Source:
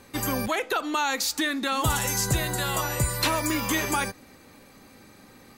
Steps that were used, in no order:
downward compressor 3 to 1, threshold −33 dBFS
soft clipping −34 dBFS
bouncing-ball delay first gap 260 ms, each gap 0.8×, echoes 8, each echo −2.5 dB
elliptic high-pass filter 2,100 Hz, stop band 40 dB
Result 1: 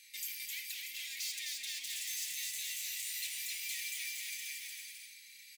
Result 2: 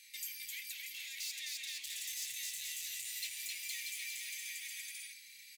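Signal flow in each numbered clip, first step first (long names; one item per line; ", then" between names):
soft clipping, then bouncing-ball delay, then downward compressor, then elliptic high-pass filter
bouncing-ball delay, then downward compressor, then soft clipping, then elliptic high-pass filter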